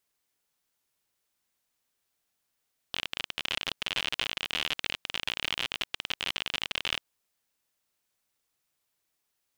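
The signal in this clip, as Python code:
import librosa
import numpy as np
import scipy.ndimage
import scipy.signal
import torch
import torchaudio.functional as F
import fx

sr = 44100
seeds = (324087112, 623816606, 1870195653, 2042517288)

y = fx.geiger_clicks(sr, seeds[0], length_s=4.1, per_s=51.0, level_db=-13.5)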